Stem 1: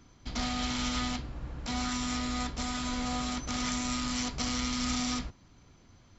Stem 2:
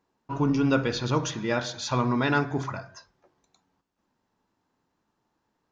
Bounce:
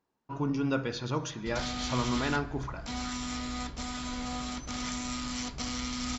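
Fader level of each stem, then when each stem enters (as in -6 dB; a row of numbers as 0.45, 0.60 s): -3.0, -6.5 dB; 1.20, 0.00 s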